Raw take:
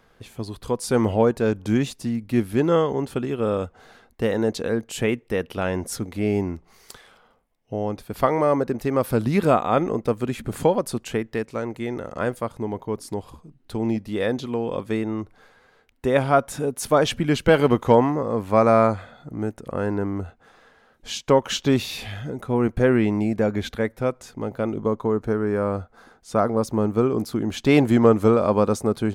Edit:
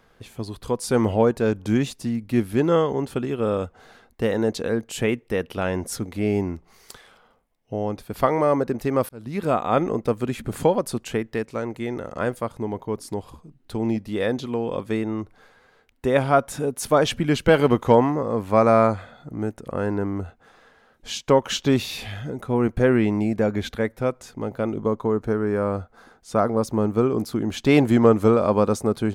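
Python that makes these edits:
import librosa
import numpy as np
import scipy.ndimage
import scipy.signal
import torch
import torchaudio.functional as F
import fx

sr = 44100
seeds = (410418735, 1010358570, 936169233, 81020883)

y = fx.edit(x, sr, fx.fade_in_span(start_s=9.09, length_s=0.66), tone=tone)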